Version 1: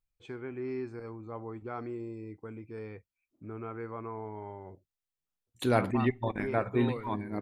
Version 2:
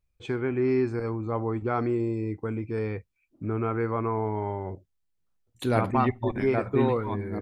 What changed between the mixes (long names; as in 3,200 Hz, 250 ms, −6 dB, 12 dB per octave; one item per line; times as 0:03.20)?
first voice +11.0 dB
master: add low-shelf EQ 170 Hz +4.5 dB